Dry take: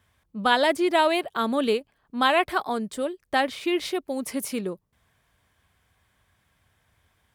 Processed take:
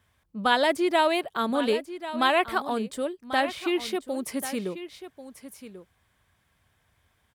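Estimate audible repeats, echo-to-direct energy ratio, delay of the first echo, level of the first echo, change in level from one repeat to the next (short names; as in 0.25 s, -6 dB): 1, -13.0 dB, 1.09 s, -13.0 dB, no steady repeat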